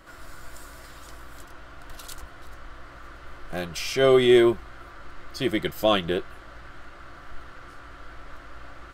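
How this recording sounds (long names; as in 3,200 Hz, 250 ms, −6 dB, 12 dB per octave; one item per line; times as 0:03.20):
background noise floor −46 dBFS
spectral slope −3.5 dB per octave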